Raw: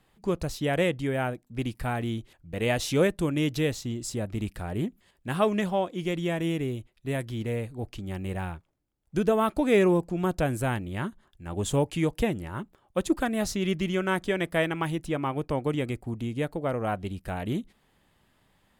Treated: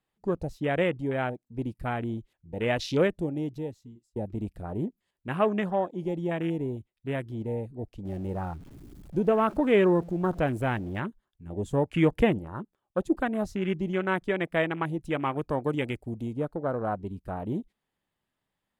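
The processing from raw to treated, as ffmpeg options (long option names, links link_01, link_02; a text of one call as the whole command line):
ffmpeg -i in.wav -filter_complex "[0:a]asettb=1/sr,asplit=3[link_01][link_02][link_03];[link_01]atrim=end=8.054[link_04];[link_02]atrim=start=8.05:end=11,asetpts=PTS-STARTPTS,afade=type=in:duration=0.004:curve=qsin,afade=type=out:start_time=2.946:duration=0.004:curve=qsin,aeval=exprs='val(0)+0.5*0.0168*sgn(val(0))':channel_layout=same[link_05];[link_03]atrim=start=10.996[link_06];[link_04][link_05]acrossfade=duration=0.004:curve1=hsin:curve2=qsin[link_07];[link_07][link_06]acrossfade=duration=0.004:curve1=qsin:curve2=hsin,asettb=1/sr,asplit=3[link_08][link_09][link_10];[link_08]atrim=end=11.944[link_11];[link_09]atrim=start=11.94:end=12.39,asetpts=PTS-STARTPTS,afade=type=in:duration=0.004:curve=qsin,afade=type=out:start_time=0.446:duration=0.004:curve=qsin,acontrast=26[link_12];[link_10]atrim=start=12.386[link_13];[link_11][link_12]acrossfade=duration=0.004:curve1=hsin:curve2=qsin[link_14];[link_14][link_13]acrossfade=duration=0.004:curve1=qsin:curve2=hsin,asettb=1/sr,asplit=3[link_15][link_16][link_17];[link_15]atrim=end=15.054[link_18];[link_16]atrim=start=15.05:end=16.33,asetpts=PTS-STARTPTS,afade=type=in:duration=0.004:curve=qsin,afade=type=out:start_time=1.276:duration=0.004:curve=qsin,highshelf=frequency=2300:gain=9.5[link_19];[link_17]atrim=start=16.326[link_20];[link_18][link_19]acrossfade=duration=0.004:curve1=hsin:curve2=qsin[link_21];[link_21][link_20]acrossfade=duration=0.004:curve1=qsin:curve2=hsin,asplit=2[link_22][link_23];[link_22]atrim=end=4.16,asetpts=PTS-STARTPTS,afade=type=out:start_time=3.01:duration=1.15[link_24];[link_23]atrim=start=4.16,asetpts=PTS-STARTPTS,afade=type=in:duration=0.004:curve=hsin[link_25];[link_24][link_25]concat=n=2:v=0:a=1,afwtdn=0.0178,lowshelf=frequency=120:gain=-5.5" out.wav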